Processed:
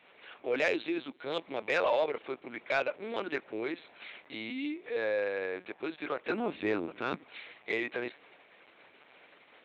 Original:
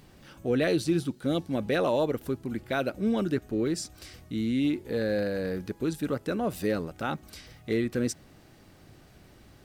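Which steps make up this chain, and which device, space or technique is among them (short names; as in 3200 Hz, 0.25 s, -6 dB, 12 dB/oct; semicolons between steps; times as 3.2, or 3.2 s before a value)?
6.3–7.24 resonant low shelf 430 Hz +10 dB, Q 1.5; talking toy (LPC vocoder at 8 kHz pitch kept; HPF 590 Hz 12 dB/oct; bell 2300 Hz +8 dB 0.32 oct; soft clip -20 dBFS, distortion -21 dB); gain +2.5 dB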